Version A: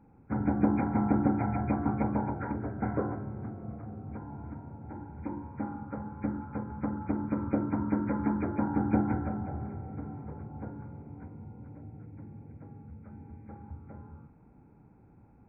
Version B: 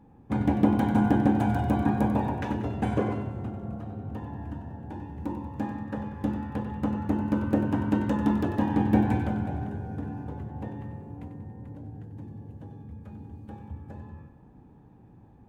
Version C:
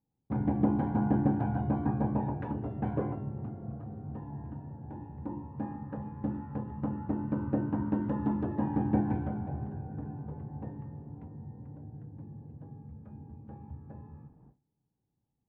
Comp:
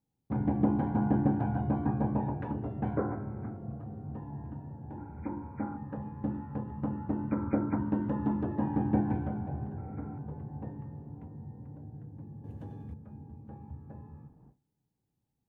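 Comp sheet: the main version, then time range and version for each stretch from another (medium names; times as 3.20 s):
C
2.97–3.57 s: from A
4.98–5.77 s: from A
7.31–7.78 s: from A
9.78–10.18 s: from A
12.44–12.94 s: from B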